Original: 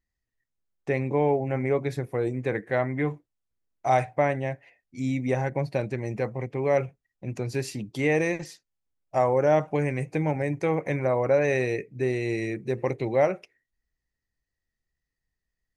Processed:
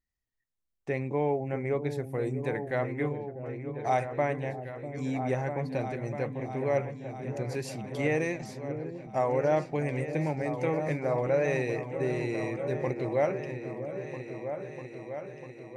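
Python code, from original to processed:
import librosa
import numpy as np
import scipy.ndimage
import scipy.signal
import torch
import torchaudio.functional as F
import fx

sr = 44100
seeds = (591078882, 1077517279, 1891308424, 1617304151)

p1 = fx.high_shelf(x, sr, hz=9600.0, db=12.0, at=(1.99, 3.09))
p2 = p1 + fx.echo_opening(p1, sr, ms=647, hz=400, octaves=2, feedback_pct=70, wet_db=-6, dry=0)
y = F.gain(torch.from_numpy(p2), -5.0).numpy()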